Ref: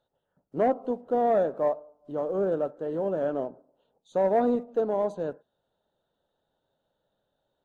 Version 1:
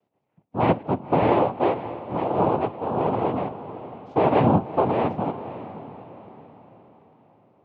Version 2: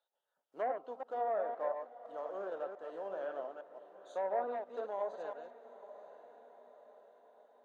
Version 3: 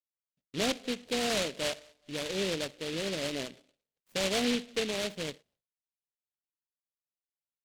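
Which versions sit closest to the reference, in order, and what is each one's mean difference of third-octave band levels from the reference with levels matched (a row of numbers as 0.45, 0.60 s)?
2, 1, 3; 6.5, 9.0, 14.0 dB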